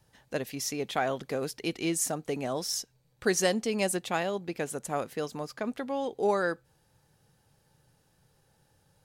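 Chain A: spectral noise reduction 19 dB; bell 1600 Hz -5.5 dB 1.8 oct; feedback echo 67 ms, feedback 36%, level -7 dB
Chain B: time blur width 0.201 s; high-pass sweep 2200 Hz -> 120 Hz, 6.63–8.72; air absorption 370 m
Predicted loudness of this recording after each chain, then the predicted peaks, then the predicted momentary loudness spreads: -32.0, -46.0 LUFS; -14.0, -27.5 dBFS; 10, 13 LU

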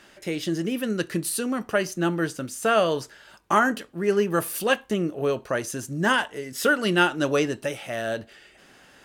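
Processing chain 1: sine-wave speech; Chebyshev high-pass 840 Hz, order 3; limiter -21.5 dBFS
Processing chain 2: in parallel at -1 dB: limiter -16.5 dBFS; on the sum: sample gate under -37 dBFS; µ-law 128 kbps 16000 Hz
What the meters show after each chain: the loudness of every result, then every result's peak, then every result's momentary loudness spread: -34.0, -21.0 LUFS; -21.5, -5.0 dBFS; 13, 7 LU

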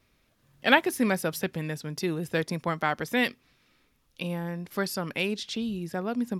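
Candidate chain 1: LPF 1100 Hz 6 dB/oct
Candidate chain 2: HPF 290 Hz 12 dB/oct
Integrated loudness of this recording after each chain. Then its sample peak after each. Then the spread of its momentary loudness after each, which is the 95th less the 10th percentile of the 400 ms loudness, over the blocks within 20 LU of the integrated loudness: -31.0, -30.0 LUFS; -8.5, -3.0 dBFS; 9, 14 LU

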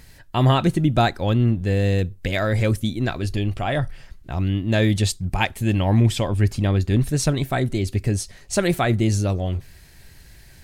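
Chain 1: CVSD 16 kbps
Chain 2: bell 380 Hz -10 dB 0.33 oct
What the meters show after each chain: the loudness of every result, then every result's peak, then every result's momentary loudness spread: -23.0, -22.0 LUFS; -7.0, -4.5 dBFS; 7, 7 LU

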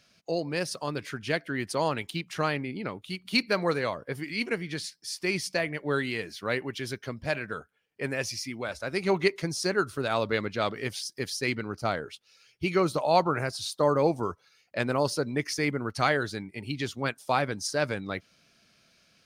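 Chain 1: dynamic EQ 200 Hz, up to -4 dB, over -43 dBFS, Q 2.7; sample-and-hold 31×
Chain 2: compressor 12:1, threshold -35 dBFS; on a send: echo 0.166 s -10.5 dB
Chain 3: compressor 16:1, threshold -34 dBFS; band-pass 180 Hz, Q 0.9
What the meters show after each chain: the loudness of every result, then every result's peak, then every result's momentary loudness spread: -30.5, -39.5, -46.0 LUFS; -11.0, -21.0, -27.0 dBFS; 11, 4, 5 LU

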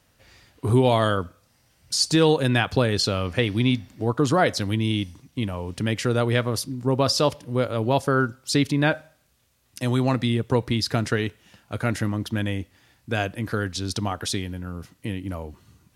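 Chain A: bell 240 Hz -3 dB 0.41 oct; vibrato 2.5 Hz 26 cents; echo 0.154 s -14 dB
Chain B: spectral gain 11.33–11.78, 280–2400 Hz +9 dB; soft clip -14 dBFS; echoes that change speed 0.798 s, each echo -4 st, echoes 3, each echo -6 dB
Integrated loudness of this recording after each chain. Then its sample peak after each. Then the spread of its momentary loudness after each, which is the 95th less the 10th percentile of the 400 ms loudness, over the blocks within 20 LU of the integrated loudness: -24.0, -25.0 LUFS; -6.0, -10.5 dBFS; 13, 9 LU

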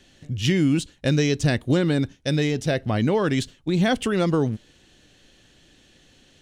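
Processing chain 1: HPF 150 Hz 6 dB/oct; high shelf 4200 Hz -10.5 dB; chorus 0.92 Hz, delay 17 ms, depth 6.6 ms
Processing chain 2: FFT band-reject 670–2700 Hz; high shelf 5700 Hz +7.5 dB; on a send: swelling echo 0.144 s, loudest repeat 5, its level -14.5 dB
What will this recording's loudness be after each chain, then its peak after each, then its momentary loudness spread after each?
-27.5, -22.5 LUFS; -11.0, -6.5 dBFS; 7, 12 LU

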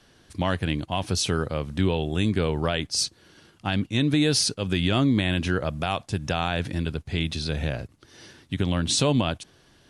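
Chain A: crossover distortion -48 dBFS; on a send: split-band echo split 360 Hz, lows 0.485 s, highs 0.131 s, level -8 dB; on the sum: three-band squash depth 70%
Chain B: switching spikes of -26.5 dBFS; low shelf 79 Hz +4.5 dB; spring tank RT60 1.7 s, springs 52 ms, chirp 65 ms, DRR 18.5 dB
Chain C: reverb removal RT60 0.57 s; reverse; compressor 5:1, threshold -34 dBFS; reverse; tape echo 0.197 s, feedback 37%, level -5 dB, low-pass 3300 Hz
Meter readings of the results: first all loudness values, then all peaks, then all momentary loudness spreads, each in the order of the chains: -25.0, -25.0, -37.0 LUFS; -9.5, -10.0, -20.5 dBFS; 6, 10, 9 LU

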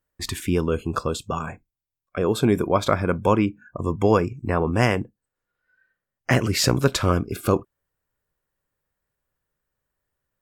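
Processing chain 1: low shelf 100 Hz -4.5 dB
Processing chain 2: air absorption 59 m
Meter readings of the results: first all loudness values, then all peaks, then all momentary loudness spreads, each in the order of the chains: -23.5, -23.0 LUFS; -4.0, -4.5 dBFS; 10, 10 LU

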